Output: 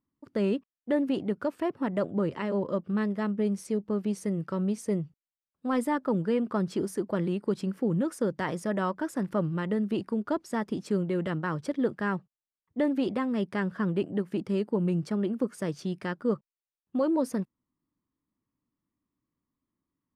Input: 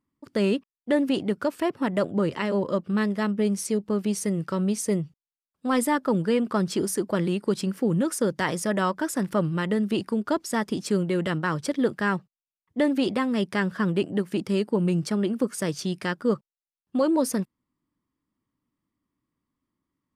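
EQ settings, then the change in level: treble shelf 2.6 kHz -11 dB; -3.5 dB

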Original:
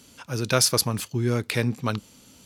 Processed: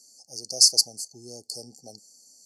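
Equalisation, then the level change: frequency weighting ITU-R 468; dynamic bell 4.7 kHz, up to +4 dB, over -21 dBFS, Q 0.73; brick-wall FIR band-stop 840–4300 Hz; -9.5 dB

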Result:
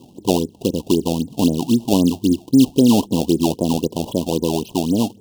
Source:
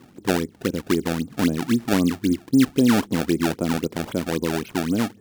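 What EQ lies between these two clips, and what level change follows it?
Chebyshev band-stop 1–2.8 kHz, order 4; +5.0 dB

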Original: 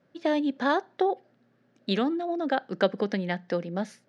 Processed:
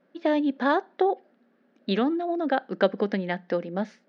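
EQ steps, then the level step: brick-wall FIR high-pass 170 Hz; distance through air 160 m; +2.5 dB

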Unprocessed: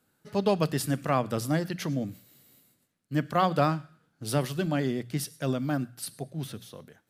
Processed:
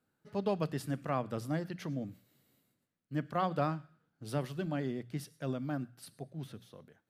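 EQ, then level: treble shelf 3.8 kHz -9 dB; -7.5 dB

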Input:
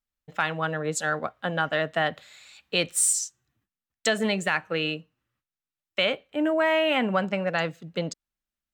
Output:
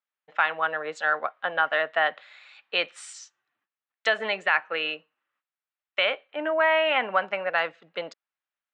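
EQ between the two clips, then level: band-pass 750–2700 Hz; distance through air 58 m; +5.0 dB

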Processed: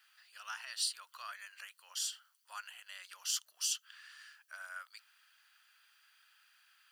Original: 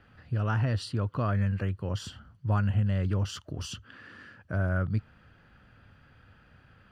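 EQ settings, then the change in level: high-pass 870 Hz 24 dB/octave; differentiator; treble shelf 3.3 kHz +8.5 dB; +4.0 dB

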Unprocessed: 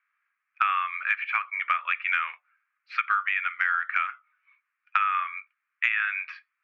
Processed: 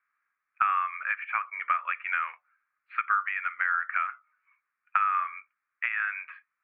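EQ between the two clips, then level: Gaussian low-pass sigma 4.2 samples; +2.0 dB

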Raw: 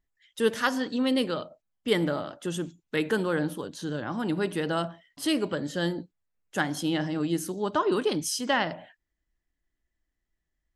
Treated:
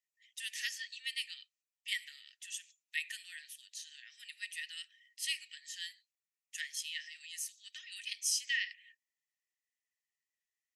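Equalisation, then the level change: rippled Chebyshev high-pass 1.8 kHz, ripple 6 dB; 0.0 dB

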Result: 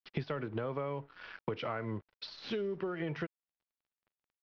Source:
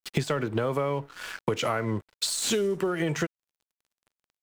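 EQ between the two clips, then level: elliptic low-pass 5.4 kHz, stop band 40 dB; distance through air 210 m; -8.0 dB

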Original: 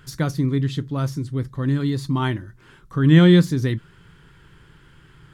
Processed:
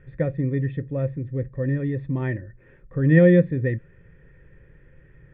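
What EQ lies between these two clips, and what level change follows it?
cascade formant filter e; bass shelf 89 Hz +6 dB; bass shelf 230 Hz +10 dB; +8.0 dB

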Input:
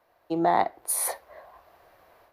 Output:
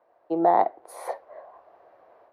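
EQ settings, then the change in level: band-pass filter 560 Hz, Q 1; +4.5 dB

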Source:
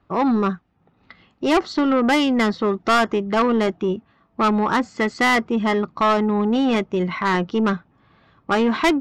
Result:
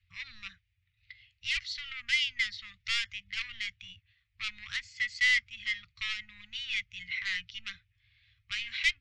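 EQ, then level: Chebyshev band-stop 100–2100 Hz, order 4; distance through air 90 m; bass shelf 120 Hz -8 dB; 0.0 dB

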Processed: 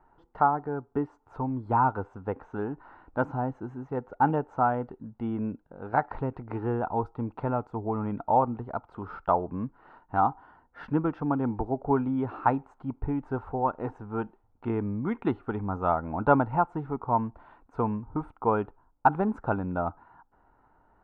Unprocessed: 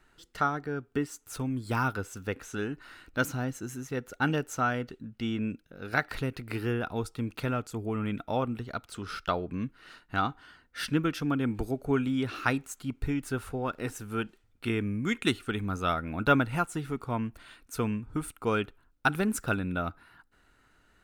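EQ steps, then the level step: resonant low-pass 890 Hz, resonance Q 4.9; 0.0 dB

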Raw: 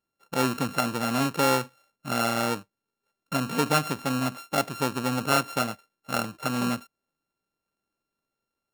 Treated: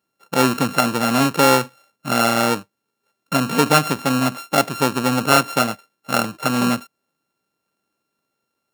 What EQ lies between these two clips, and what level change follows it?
high-pass 110 Hz; +8.5 dB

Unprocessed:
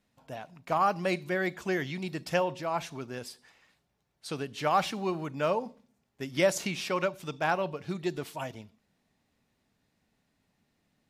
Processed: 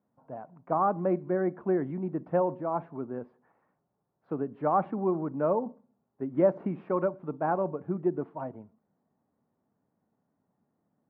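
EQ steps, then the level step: high-pass 130 Hz 12 dB/octave; low-pass 1.2 kHz 24 dB/octave; dynamic bell 280 Hz, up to +6 dB, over -44 dBFS, Q 0.99; 0.0 dB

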